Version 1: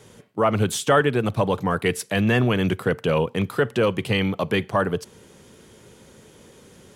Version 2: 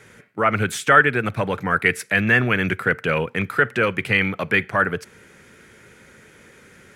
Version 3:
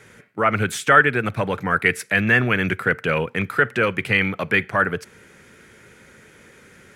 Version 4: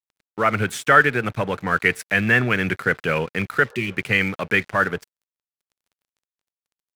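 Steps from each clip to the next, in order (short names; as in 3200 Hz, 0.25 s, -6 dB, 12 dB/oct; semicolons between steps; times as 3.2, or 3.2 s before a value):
band shelf 1800 Hz +12 dB 1.1 oct; gain -2 dB
nothing audible
crossover distortion -39 dBFS; spectral repair 3.66–3.89, 400–1800 Hz after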